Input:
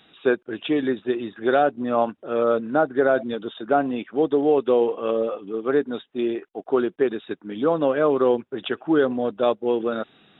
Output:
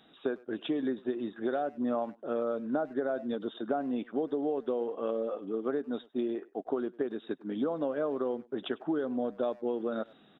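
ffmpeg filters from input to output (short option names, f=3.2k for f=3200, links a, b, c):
-filter_complex "[0:a]acompressor=threshold=-25dB:ratio=8,equalizer=f=100:t=o:w=0.67:g=-4,equalizer=f=250:t=o:w=0.67:g=5,equalizer=f=630:t=o:w=0.67:g=4,equalizer=f=2.5k:t=o:w=0.67:g=-7,asplit=2[a][b];[b]adelay=100,highpass=300,lowpass=3.4k,asoftclip=type=hard:threshold=-24dB,volume=-21dB[c];[a][c]amix=inputs=2:normalize=0,volume=-5.5dB"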